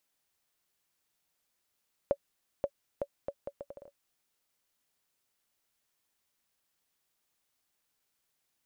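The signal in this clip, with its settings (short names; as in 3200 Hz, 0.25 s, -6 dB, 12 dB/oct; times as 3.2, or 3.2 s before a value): bouncing ball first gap 0.53 s, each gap 0.71, 564 Hz, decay 60 ms -16 dBFS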